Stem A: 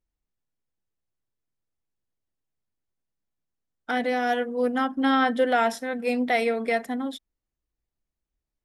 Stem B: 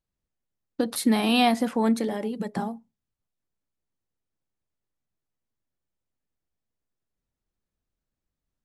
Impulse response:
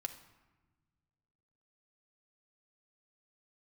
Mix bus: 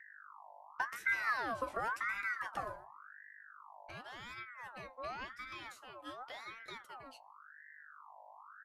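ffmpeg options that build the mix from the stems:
-filter_complex "[0:a]equalizer=frequency=340:width=0.3:gain=-7,aeval=exprs='val(0)+0.00316*(sin(2*PI*60*n/s)+sin(2*PI*2*60*n/s)/2+sin(2*PI*3*60*n/s)/3+sin(2*PI*4*60*n/s)/4+sin(2*PI*5*60*n/s)/5)':channel_layout=same,volume=-9.5dB,asplit=3[link_01][link_02][link_03];[link_02]volume=-21.5dB[link_04];[1:a]aeval=exprs='val(0)+0.00631*(sin(2*PI*50*n/s)+sin(2*PI*2*50*n/s)/2+sin(2*PI*3*50*n/s)/3+sin(2*PI*4*50*n/s)/4+sin(2*PI*5*50*n/s)/5)':channel_layout=same,volume=-1.5dB,asplit=3[link_05][link_06][link_07];[link_06]volume=-22.5dB[link_08];[link_07]volume=-15dB[link_09];[link_03]apad=whole_len=381317[link_10];[link_05][link_10]sidechaincompress=threshold=-53dB:ratio=8:attack=16:release=606[link_11];[2:a]atrim=start_sample=2205[link_12];[link_04][link_08]amix=inputs=2:normalize=0[link_13];[link_13][link_12]afir=irnorm=-1:irlink=0[link_14];[link_09]aecho=0:1:121:1[link_15];[link_01][link_11][link_14][link_15]amix=inputs=4:normalize=0,acrossover=split=120|540|2300[link_16][link_17][link_18][link_19];[link_16]acompressor=threshold=-49dB:ratio=4[link_20];[link_17]acompressor=threshold=-27dB:ratio=4[link_21];[link_18]acompressor=threshold=-46dB:ratio=4[link_22];[link_19]acompressor=threshold=-49dB:ratio=4[link_23];[link_20][link_21][link_22][link_23]amix=inputs=4:normalize=0,flanger=delay=8.5:depth=7:regen=43:speed=0.29:shape=triangular,aeval=exprs='val(0)*sin(2*PI*1300*n/s+1300*0.4/0.91*sin(2*PI*0.91*n/s))':channel_layout=same"

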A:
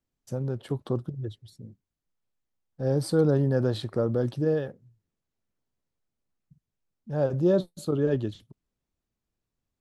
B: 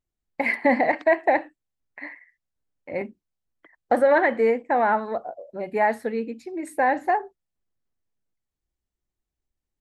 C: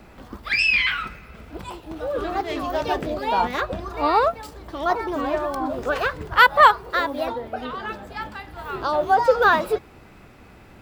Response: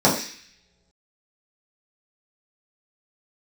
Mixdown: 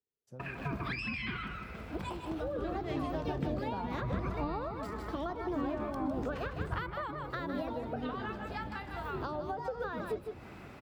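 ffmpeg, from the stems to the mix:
-filter_complex "[0:a]volume=-17dB[link_01];[1:a]aeval=exprs='val(0)*sin(2*PI*420*n/s)':channel_layout=same,volume=-14dB,asplit=2[link_02][link_03];[link_03]volume=-7dB[link_04];[2:a]acompressor=threshold=-21dB:ratio=4,adelay=400,volume=-1dB,asplit=2[link_05][link_06];[link_06]volume=-9dB[link_07];[link_04][link_07]amix=inputs=2:normalize=0,aecho=0:1:155:1[link_08];[link_01][link_02][link_05][link_08]amix=inputs=4:normalize=0,highpass=56,highshelf=frequency=5500:gain=-6.5,acrossover=split=280[link_09][link_10];[link_10]acompressor=threshold=-38dB:ratio=6[link_11];[link_09][link_11]amix=inputs=2:normalize=0"

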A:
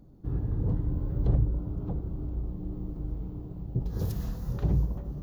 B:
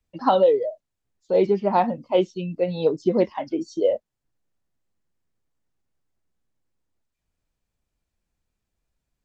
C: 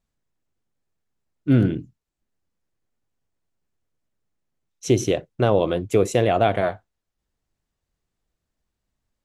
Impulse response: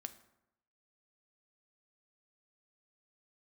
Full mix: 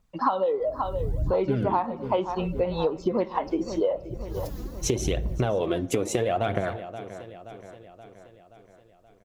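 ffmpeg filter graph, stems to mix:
-filter_complex "[0:a]acrusher=bits=9:mix=0:aa=0.000001,adelay=350,volume=-3dB[link_01];[1:a]equalizer=frequency=1100:width_type=o:width=0.95:gain=12.5,volume=-2.5dB,asplit=4[link_02][link_03][link_04][link_05];[link_03]volume=-3.5dB[link_06];[link_04]volume=-14.5dB[link_07];[2:a]volume=0dB,asplit=3[link_08][link_09][link_10];[link_09]volume=-3.5dB[link_11];[link_10]volume=-20dB[link_12];[link_05]apad=whole_len=246003[link_13];[link_01][link_13]sidechaincompress=threshold=-34dB:ratio=8:attack=16:release=390[link_14];[link_14][link_08]amix=inputs=2:normalize=0,aphaser=in_gain=1:out_gain=1:delay=4.1:decay=0.72:speed=0.76:type=triangular,acompressor=threshold=-20dB:ratio=6,volume=0dB[link_15];[3:a]atrim=start_sample=2205[link_16];[link_06][link_11]amix=inputs=2:normalize=0[link_17];[link_17][link_16]afir=irnorm=-1:irlink=0[link_18];[link_07][link_12]amix=inputs=2:normalize=0,aecho=0:1:526|1052|1578|2104|2630|3156|3682|4208:1|0.56|0.314|0.176|0.0983|0.0551|0.0308|0.0173[link_19];[link_02][link_15][link_18][link_19]amix=inputs=4:normalize=0,acompressor=threshold=-21dB:ratio=8"

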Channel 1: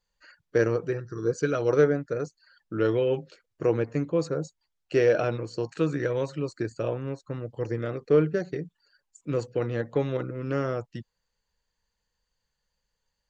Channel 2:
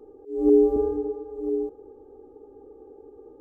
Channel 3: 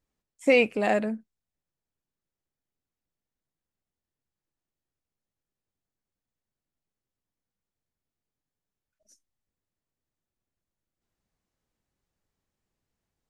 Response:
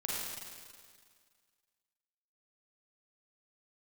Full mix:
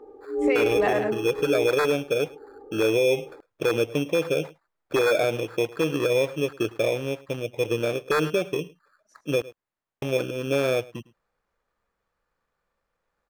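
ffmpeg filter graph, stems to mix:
-filter_complex "[0:a]lowshelf=frequency=790:width_type=q:width=1.5:gain=8,acrusher=samples=15:mix=1:aa=0.000001,aeval=exprs='0.447*(abs(mod(val(0)/0.447+3,4)-2)-1)':channel_layout=same,volume=-11dB,asplit=3[link_01][link_02][link_03];[link_01]atrim=end=9.42,asetpts=PTS-STARTPTS,afade=type=out:start_time=9.416:duration=0.004:curve=hsin[link_04];[link_02]atrim=start=9.42:end=10.02,asetpts=PTS-STARTPTS,volume=0[link_05];[link_03]atrim=start=10.02,asetpts=PTS-STARTPTS,afade=type=in:duration=0.004:curve=hsin[link_06];[link_04][link_05][link_06]concat=n=3:v=0:a=1,asplit=2[link_07][link_08];[link_08]volume=-22dB[link_09];[1:a]volume=-6dB[link_10];[2:a]volume=-7.5dB,asplit=2[link_11][link_12];[link_12]volume=-12dB[link_13];[link_09][link_13]amix=inputs=2:normalize=0,aecho=0:1:106:1[link_14];[link_07][link_10][link_11][link_14]amix=inputs=4:normalize=0,equalizer=frequency=1200:width=0.38:gain=14.5,alimiter=limit=-13dB:level=0:latency=1:release=76"

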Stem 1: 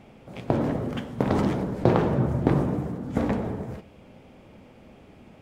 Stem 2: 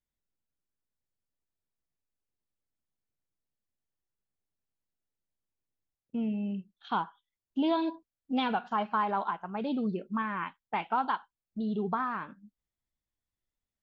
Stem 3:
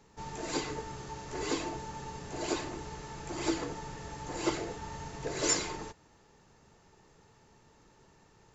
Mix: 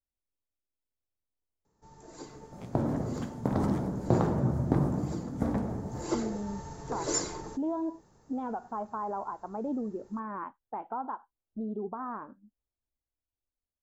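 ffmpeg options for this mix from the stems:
ffmpeg -i stem1.wav -i stem2.wav -i stem3.wav -filter_complex "[0:a]equalizer=frequency=460:width_type=o:width=0.77:gain=-4.5,adelay=2250,volume=-10.5dB[link_01];[1:a]lowpass=1000,alimiter=level_in=5dB:limit=-24dB:level=0:latency=1:release=184,volume=-5dB,equalizer=frequency=170:width_type=o:width=0.44:gain=-15,volume=-2.5dB,asplit=2[link_02][link_03];[2:a]adelay=1650,volume=-6.5dB,afade=type=in:start_time=5.85:duration=0.21:silence=0.298538[link_04];[link_03]apad=whole_len=338150[link_05];[link_01][link_05]sidechaincompress=threshold=-55dB:ratio=8:attack=16:release=412[link_06];[link_06][link_02][link_04]amix=inputs=3:normalize=0,equalizer=frequency=2700:width=1.1:gain=-13,dynaudnorm=framelen=150:gausssize=21:maxgain=7dB" out.wav

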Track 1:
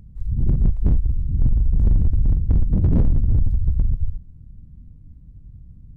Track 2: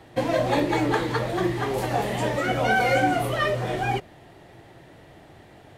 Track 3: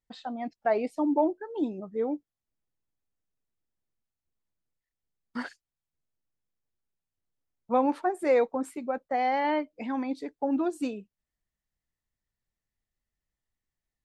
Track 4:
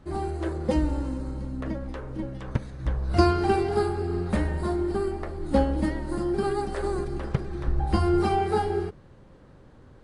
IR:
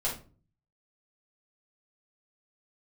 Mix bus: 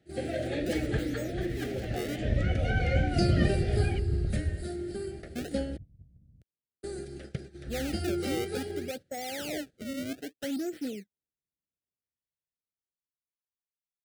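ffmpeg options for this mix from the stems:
-filter_complex "[0:a]lowshelf=frequency=310:gain=5,alimiter=limit=-11.5dB:level=0:latency=1,lowpass=frequency=700:width_type=q:width=4.9,adelay=450,volume=-5.5dB[link_01];[1:a]lowpass=4600,volume=-9dB[link_02];[2:a]dynaudnorm=framelen=210:gausssize=17:maxgain=16dB,acrusher=samples=30:mix=1:aa=0.000001:lfo=1:lforange=48:lforate=0.63,asoftclip=type=tanh:threshold=-15dB,volume=-14dB,asplit=2[link_03][link_04];[3:a]highshelf=frequency=3200:gain=11,volume=-9dB,asplit=3[link_05][link_06][link_07];[link_05]atrim=end=5.77,asetpts=PTS-STARTPTS,afade=type=out:start_time=5.766:duration=0.004:curve=hsin[link_08];[link_06]atrim=start=5.77:end=6.83,asetpts=PTS-STARTPTS,volume=0[link_09];[link_07]atrim=start=6.83,asetpts=PTS-STARTPTS,afade=type=in:duration=0.004:curve=hsin[link_10];[link_08][link_09][link_10]concat=n=3:v=0:a=1[link_11];[link_04]apad=whole_len=282989[link_12];[link_01][link_12]sidechaincompress=threshold=-56dB:ratio=8:attack=16:release=104[link_13];[link_13][link_02][link_03][link_11]amix=inputs=4:normalize=0,highpass=74,agate=range=-11dB:threshold=-42dB:ratio=16:detection=peak,asuperstop=centerf=1000:order=4:qfactor=1.2"

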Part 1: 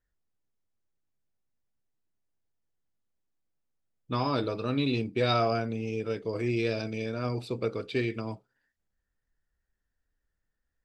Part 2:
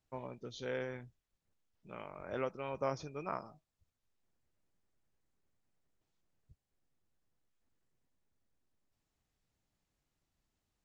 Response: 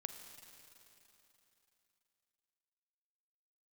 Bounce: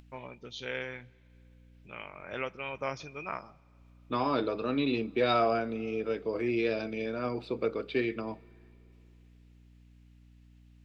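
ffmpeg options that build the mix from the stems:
-filter_complex "[0:a]acrossover=split=170 4300:gain=0.0891 1 0.0891[link_01][link_02][link_03];[link_01][link_02][link_03]amix=inputs=3:normalize=0,volume=-0.5dB,asplit=2[link_04][link_05];[link_05]volume=-14.5dB[link_06];[1:a]aeval=exprs='val(0)+0.001*(sin(2*PI*60*n/s)+sin(2*PI*2*60*n/s)/2+sin(2*PI*3*60*n/s)/3+sin(2*PI*4*60*n/s)/4+sin(2*PI*5*60*n/s)/5)':channel_layout=same,equalizer=frequency=2600:width_type=o:width=1.4:gain=13.5,acompressor=mode=upward:threshold=-49dB:ratio=2.5,volume=-2dB,asplit=2[link_07][link_08];[link_08]volume=-15dB[link_09];[2:a]atrim=start_sample=2205[link_10];[link_06][link_09]amix=inputs=2:normalize=0[link_11];[link_11][link_10]afir=irnorm=-1:irlink=0[link_12];[link_04][link_07][link_12]amix=inputs=3:normalize=0"

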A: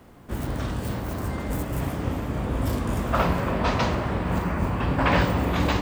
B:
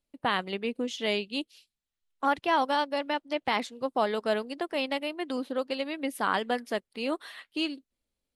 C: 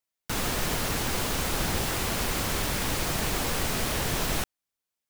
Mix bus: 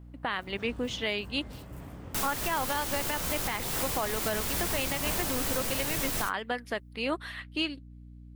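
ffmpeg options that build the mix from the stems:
ffmpeg -i stem1.wav -i stem2.wav -i stem3.wav -filter_complex "[0:a]volume=-17dB[link_01];[1:a]equalizer=frequency=1800:width_type=o:width=1.7:gain=7,aeval=exprs='val(0)+0.00562*(sin(2*PI*60*n/s)+sin(2*PI*2*60*n/s)/2+sin(2*PI*3*60*n/s)/3+sin(2*PI*4*60*n/s)/4+sin(2*PI*5*60*n/s)/5)':channel_layout=same,volume=-1.5dB[link_02];[2:a]highshelf=frequency=7400:gain=10,flanger=delay=6.4:depth=8.8:regen=-44:speed=0.49:shape=triangular,adelay=1850,volume=0dB[link_03];[link_01][link_02][link_03]amix=inputs=3:normalize=0,alimiter=limit=-19dB:level=0:latency=1:release=258" out.wav

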